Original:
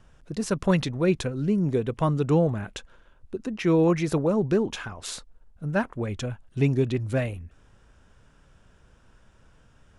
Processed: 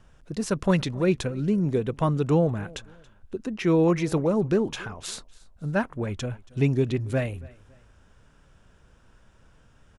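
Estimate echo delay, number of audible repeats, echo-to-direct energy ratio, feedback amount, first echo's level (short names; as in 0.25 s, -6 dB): 0.278 s, 2, -22.5 dB, 33%, -23.0 dB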